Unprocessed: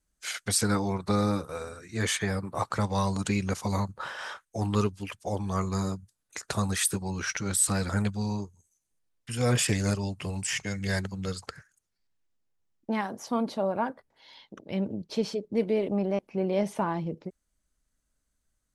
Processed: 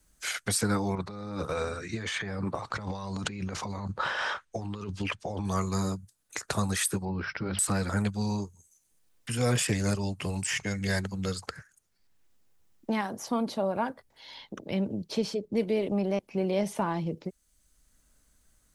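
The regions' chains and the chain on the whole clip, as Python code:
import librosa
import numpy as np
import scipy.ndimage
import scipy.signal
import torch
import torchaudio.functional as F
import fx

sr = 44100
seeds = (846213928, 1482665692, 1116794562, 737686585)

y = fx.chain(x, sr, fx.lowpass(hz=4800.0, slope=12),
    fx.over_compress(threshold_db=-36.0, ratio=-1.0), at=(0.95, 5.45))
y = fx.chain(y, sr, fx.lowpass(hz=1200.0, slope=6),
    fx.resample_bad(factor=4, down='none', up='filtered'),
    fx.hum_notches(base_hz=50, count=4), at=(7.05, 7.59))
y = fx.high_shelf(y, sr, hz=9200.0, db=4.5)
y = fx.band_squash(y, sr, depth_pct=40)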